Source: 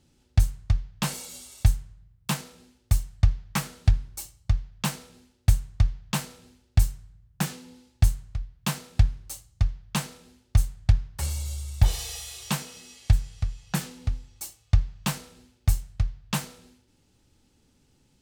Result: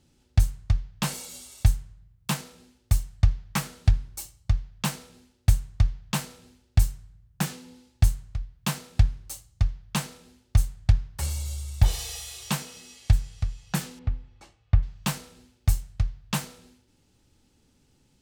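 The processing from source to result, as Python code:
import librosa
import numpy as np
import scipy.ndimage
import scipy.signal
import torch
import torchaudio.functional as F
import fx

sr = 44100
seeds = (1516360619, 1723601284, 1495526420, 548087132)

y = fx.lowpass(x, sr, hz=2300.0, slope=12, at=(13.99, 14.83))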